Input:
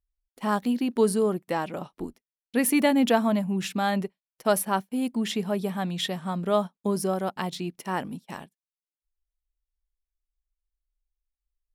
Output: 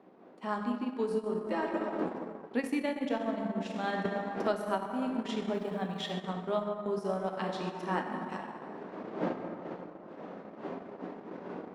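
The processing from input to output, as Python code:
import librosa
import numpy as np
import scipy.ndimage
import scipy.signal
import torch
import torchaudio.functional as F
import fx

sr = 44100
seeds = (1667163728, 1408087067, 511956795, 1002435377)

p1 = fx.dmg_wind(x, sr, seeds[0], corner_hz=520.0, level_db=-41.0)
p2 = fx.air_absorb(p1, sr, metres=91.0)
p3 = p2 + fx.echo_single(p2, sr, ms=133, db=-17.0, dry=0)
p4 = fx.rev_plate(p3, sr, seeds[1], rt60_s=2.7, hf_ratio=0.45, predelay_ms=0, drr_db=0.0)
p5 = fx.rider(p4, sr, range_db=5, speed_s=0.5)
p6 = fx.sample_gate(p5, sr, floor_db=-46.5, at=(5.54, 6.12))
p7 = scipy.signal.sosfilt(scipy.signal.butter(4, 200.0, 'highpass', fs=sr, output='sos'), p6)
p8 = fx.transient(p7, sr, attack_db=2, sustain_db=-8)
p9 = fx.comb(p8, sr, ms=3.2, depth=0.68, at=(1.46, 2.03))
p10 = fx.band_squash(p9, sr, depth_pct=70, at=(4.05, 4.86))
y = F.gain(torch.from_numpy(p10), -9.0).numpy()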